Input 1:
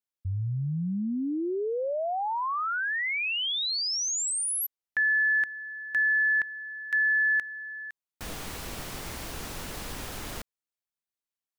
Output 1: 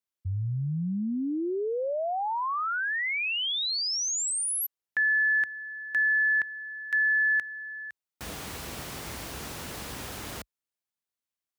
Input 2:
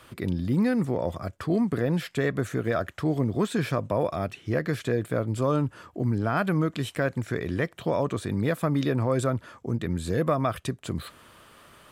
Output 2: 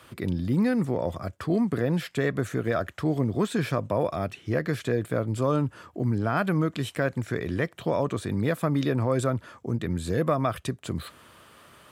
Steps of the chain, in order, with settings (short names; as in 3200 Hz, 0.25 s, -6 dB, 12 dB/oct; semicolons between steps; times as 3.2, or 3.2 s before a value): HPF 51 Hz 24 dB/oct